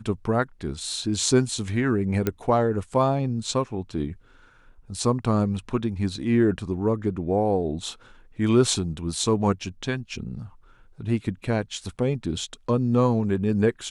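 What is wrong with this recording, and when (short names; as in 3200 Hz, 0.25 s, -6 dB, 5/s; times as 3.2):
2.27 pop -10 dBFS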